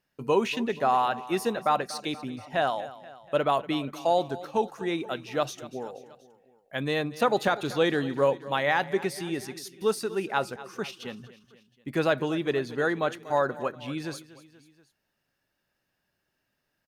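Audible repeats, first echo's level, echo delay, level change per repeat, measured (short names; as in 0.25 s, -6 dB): 3, -17.0 dB, 0.24 s, -4.5 dB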